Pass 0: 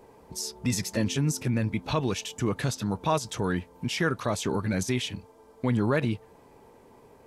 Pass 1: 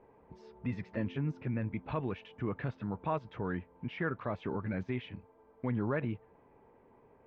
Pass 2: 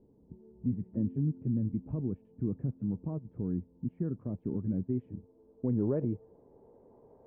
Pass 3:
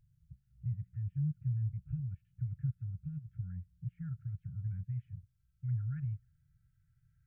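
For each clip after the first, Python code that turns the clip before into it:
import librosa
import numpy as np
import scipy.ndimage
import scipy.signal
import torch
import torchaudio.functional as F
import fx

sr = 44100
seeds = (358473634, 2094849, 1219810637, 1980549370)

y1 = scipy.signal.sosfilt(scipy.signal.butter(4, 2400.0, 'lowpass', fs=sr, output='sos'), x)
y1 = y1 * librosa.db_to_amplitude(-8.0)
y2 = fx.filter_sweep_lowpass(y1, sr, from_hz=260.0, to_hz=650.0, start_s=4.45, end_s=7.22, q=1.4)
y2 = y2 * librosa.db_to_amplitude(2.0)
y3 = fx.brickwall_bandstop(y2, sr, low_hz=160.0, high_hz=1300.0)
y3 = y3 * librosa.db_to_amplitude(1.0)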